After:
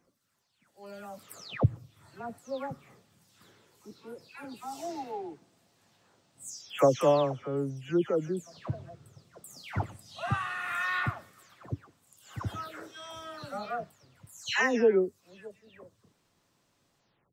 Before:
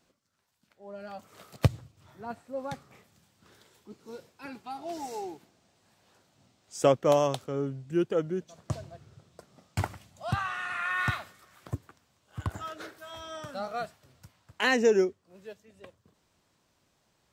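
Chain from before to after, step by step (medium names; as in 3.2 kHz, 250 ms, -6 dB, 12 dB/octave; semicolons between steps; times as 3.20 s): delay that grows with frequency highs early, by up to 330 ms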